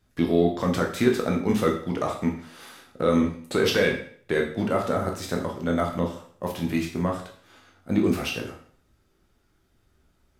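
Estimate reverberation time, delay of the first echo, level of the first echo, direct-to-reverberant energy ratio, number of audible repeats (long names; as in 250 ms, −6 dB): 0.55 s, no echo audible, no echo audible, 0.5 dB, no echo audible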